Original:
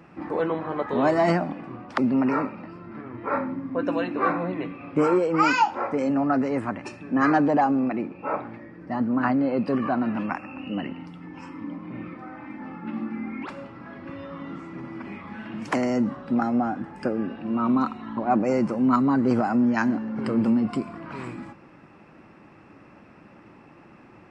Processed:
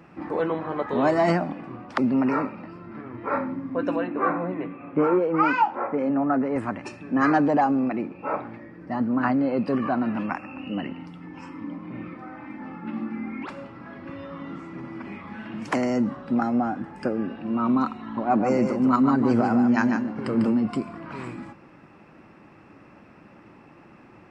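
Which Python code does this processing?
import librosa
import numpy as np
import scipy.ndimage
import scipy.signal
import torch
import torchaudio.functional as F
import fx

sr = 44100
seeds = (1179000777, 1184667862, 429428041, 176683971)

y = fx.bandpass_edges(x, sr, low_hz=130.0, high_hz=2000.0, at=(3.96, 6.56))
y = fx.echo_single(y, sr, ms=148, db=-6.0, at=(18.13, 20.53), fade=0.02)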